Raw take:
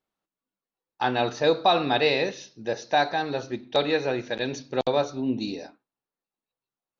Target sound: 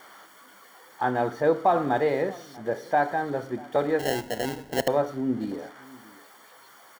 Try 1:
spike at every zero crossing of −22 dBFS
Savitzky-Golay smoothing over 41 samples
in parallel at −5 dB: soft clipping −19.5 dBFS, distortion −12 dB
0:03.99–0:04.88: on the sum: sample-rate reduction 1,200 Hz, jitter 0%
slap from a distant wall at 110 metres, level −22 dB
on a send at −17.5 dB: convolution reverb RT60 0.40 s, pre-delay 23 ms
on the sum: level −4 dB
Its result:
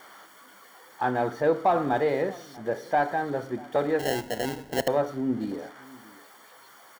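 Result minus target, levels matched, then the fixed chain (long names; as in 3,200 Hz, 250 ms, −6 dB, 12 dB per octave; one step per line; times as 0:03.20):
soft clipping: distortion +15 dB
spike at every zero crossing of −22 dBFS
Savitzky-Golay smoothing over 41 samples
in parallel at −5 dB: soft clipping −9 dBFS, distortion −27 dB
0:03.99–0:04.88: on the sum: sample-rate reduction 1,200 Hz, jitter 0%
slap from a distant wall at 110 metres, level −22 dB
on a send at −17.5 dB: convolution reverb RT60 0.40 s, pre-delay 23 ms
on the sum: level −4 dB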